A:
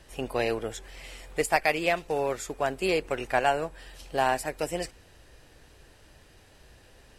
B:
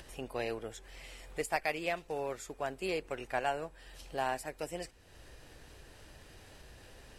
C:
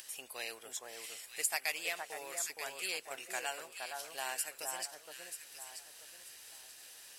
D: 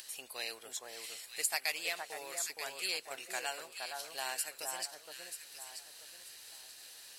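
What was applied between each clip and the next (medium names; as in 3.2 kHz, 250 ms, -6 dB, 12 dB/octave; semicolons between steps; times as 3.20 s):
upward compressor, threshold -34 dBFS; trim -9 dB
differentiator; echo whose repeats swap between lows and highs 467 ms, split 1.6 kHz, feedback 52%, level -3 dB; trim +10 dB
peaking EQ 4.2 kHz +8 dB 0.24 oct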